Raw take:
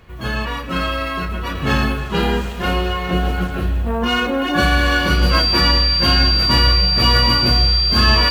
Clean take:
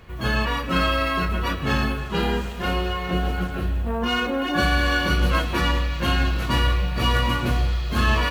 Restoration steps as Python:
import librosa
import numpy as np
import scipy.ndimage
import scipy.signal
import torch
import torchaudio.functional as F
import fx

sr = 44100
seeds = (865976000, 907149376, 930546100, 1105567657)

y = fx.notch(x, sr, hz=4700.0, q=30.0)
y = fx.gain(y, sr, db=fx.steps((0.0, 0.0), (1.55, -5.0)))